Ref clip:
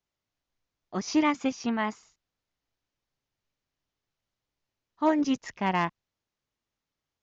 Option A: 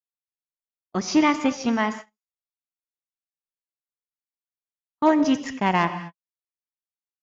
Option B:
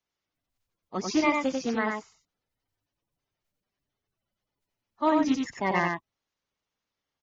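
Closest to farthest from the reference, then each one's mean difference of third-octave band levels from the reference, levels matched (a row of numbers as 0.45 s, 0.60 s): A, B; 3.0 dB, 5.0 dB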